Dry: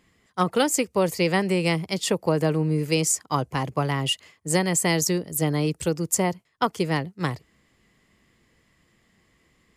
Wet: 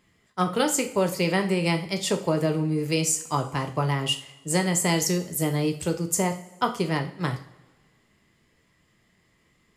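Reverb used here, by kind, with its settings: two-slope reverb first 0.4 s, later 1.5 s, from -18 dB, DRR 4.5 dB; gain -2.5 dB

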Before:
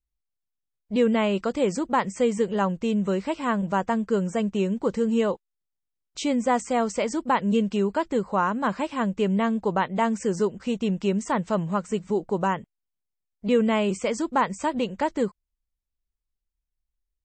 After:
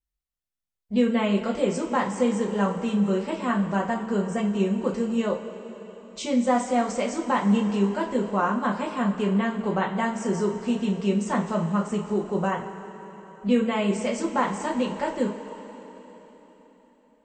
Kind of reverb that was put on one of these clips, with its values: two-slope reverb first 0.28 s, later 4.2 s, from -18 dB, DRR -1.5 dB; gain -4.5 dB

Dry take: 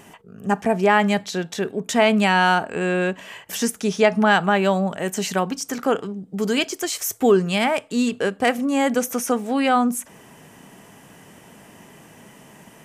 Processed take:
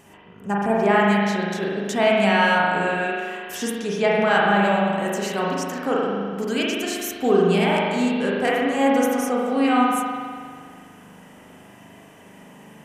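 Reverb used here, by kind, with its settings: spring tank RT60 1.9 s, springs 40 ms, chirp 80 ms, DRR -4.5 dB; gain -5.5 dB

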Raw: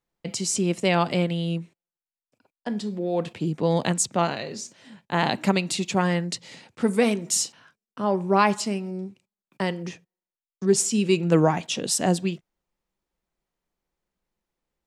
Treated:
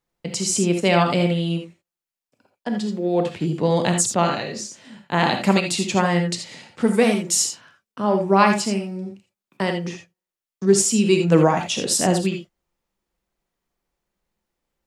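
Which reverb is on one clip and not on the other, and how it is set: non-linear reverb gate 0.1 s rising, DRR 4.5 dB; gain +3 dB

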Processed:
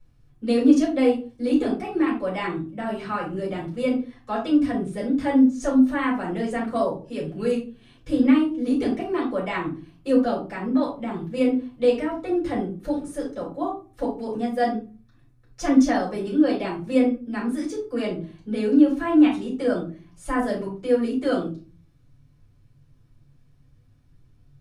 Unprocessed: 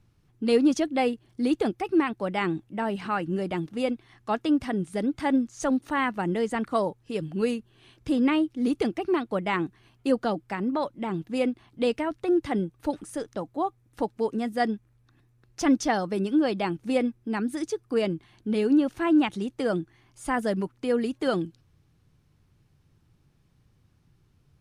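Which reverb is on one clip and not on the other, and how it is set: shoebox room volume 170 m³, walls furnished, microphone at 5.8 m; gain -10 dB

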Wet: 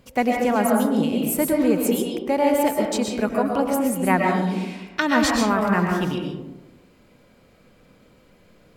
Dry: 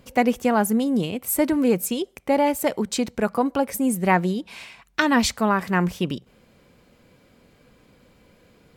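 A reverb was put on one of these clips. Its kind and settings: digital reverb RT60 1.1 s, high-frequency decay 0.35×, pre-delay 85 ms, DRR 0 dB; gain -2 dB

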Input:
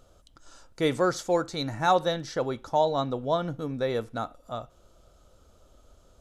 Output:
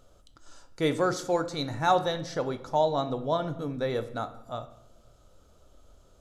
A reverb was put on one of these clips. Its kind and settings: shoebox room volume 230 m³, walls mixed, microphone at 0.33 m; gain -1.5 dB

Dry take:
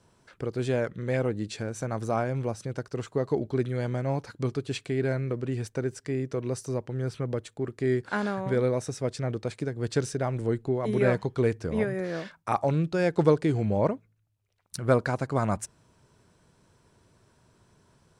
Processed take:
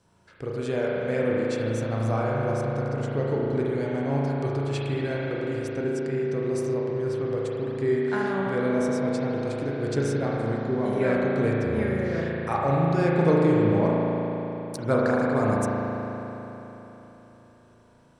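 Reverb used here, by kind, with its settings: spring tank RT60 3.8 s, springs 36 ms, chirp 45 ms, DRR -4.5 dB; gain -2.5 dB

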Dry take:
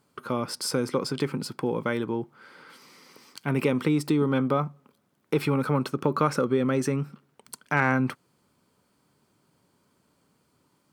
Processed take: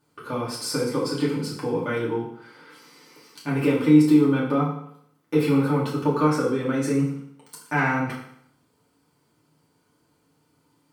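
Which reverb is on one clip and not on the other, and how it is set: FDN reverb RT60 0.69 s, low-frequency decay 0.95×, high-frequency decay 0.9×, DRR -6.5 dB; gain -6 dB

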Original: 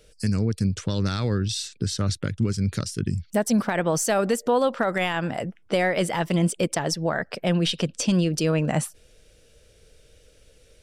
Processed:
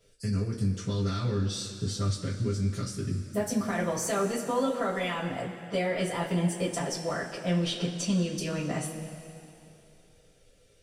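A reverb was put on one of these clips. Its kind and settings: two-slope reverb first 0.21 s, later 2.9 s, from -18 dB, DRR -8.5 dB; gain -15 dB

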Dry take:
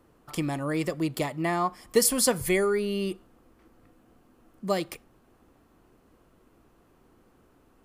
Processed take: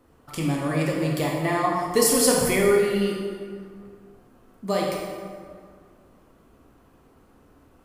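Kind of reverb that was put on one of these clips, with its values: plate-style reverb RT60 2 s, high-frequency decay 0.6×, DRR -3 dB

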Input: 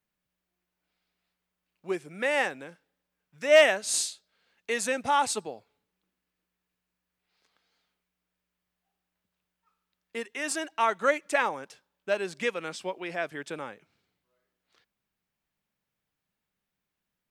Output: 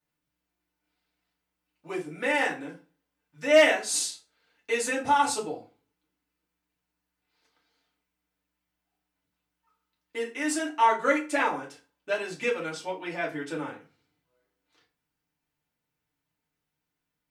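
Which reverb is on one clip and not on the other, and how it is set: FDN reverb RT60 0.34 s, low-frequency decay 1.2×, high-frequency decay 0.75×, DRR -5 dB; gain -5 dB

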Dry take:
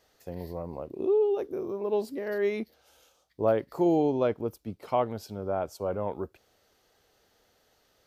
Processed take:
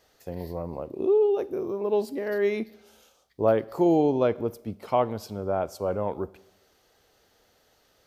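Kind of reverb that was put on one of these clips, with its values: Schroeder reverb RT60 0.89 s, combs from 32 ms, DRR 19.5 dB; gain +3 dB

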